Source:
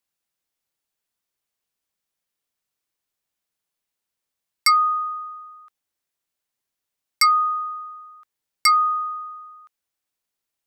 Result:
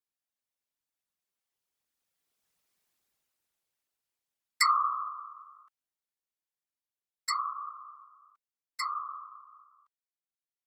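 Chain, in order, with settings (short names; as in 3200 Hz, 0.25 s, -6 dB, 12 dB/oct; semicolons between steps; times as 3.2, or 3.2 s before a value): Doppler pass-by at 2.75, 17 m/s, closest 7.9 m; whisperiser; gain +4.5 dB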